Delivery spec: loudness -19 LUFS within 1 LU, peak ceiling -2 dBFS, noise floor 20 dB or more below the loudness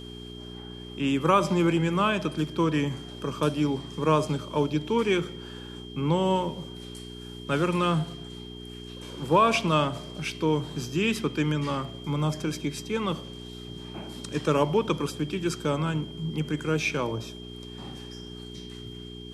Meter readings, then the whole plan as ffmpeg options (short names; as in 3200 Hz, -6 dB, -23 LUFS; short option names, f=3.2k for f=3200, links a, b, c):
hum 60 Hz; harmonics up to 420 Hz; hum level -39 dBFS; steady tone 3200 Hz; tone level -45 dBFS; loudness -27.0 LUFS; peak -9.0 dBFS; loudness target -19.0 LUFS
-> -af "bandreject=f=60:t=h:w=4,bandreject=f=120:t=h:w=4,bandreject=f=180:t=h:w=4,bandreject=f=240:t=h:w=4,bandreject=f=300:t=h:w=4,bandreject=f=360:t=h:w=4,bandreject=f=420:t=h:w=4"
-af "bandreject=f=3.2k:w=30"
-af "volume=8dB,alimiter=limit=-2dB:level=0:latency=1"